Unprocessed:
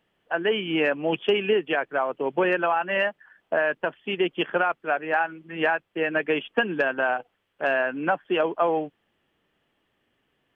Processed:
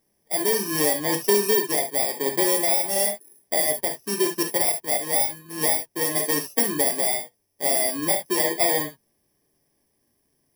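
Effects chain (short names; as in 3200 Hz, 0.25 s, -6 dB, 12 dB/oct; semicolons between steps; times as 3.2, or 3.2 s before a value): FFT order left unsorted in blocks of 32 samples; notch 920 Hz, Q 23; non-linear reverb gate 90 ms flat, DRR 3.5 dB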